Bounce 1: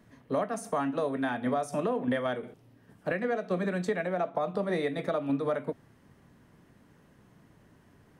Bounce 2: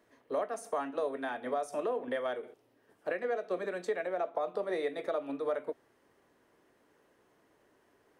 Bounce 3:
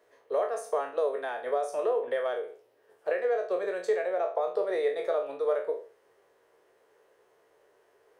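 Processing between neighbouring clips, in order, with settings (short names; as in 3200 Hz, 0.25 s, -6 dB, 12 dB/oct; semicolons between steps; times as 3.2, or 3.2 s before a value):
resonant low shelf 260 Hz -13.5 dB, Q 1.5; gain -5 dB
spectral trails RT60 0.39 s; resonant low shelf 340 Hz -8 dB, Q 3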